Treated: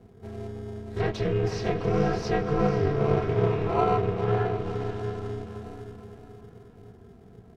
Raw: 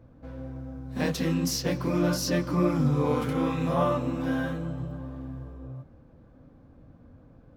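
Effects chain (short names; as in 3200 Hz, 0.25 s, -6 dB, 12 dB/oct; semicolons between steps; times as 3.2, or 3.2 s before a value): comb 3.4 ms, depth 75%; diffused feedback echo 0.5 s, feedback 43%, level -7 dB; in parallel at -9 dB: sample-and-hold 26×; on the sum: treble ducked by the level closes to 2700 Hz, closed at -19.5 dBFS; ring modulator 150 Hz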